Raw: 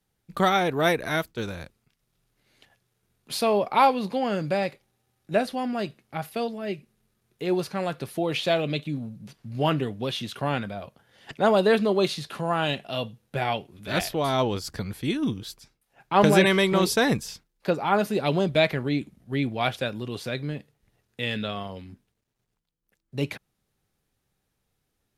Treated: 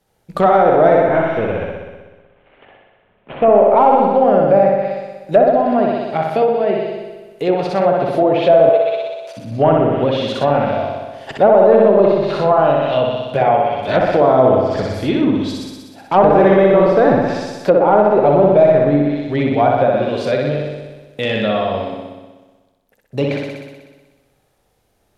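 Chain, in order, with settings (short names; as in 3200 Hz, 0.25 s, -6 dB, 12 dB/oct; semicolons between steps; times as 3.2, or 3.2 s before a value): 0.94–3.69 CVSD 16 kbps; in parallel at -3 dB: compressor, threshold -36 dBFS, peak gain reduction 21 dB; on the sum: hard clip -15 dBFS, distortion -15 dB; bell 610 Hz +10 dB 1.3 oct; on a send: flutter echo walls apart 10.6 m, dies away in 1.3 s; on the sum: treble ducked by the level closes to 1400 Hz, closed at -12.5 dBFS; 8.69–9.37 steep high-pass 380 Hz 96 dB/oct; spring tank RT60 1.2 s, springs 42/58 ms, chirp 30 ms, DRR 13.5 dB; maximiser +4.5 dB; gain -1 dB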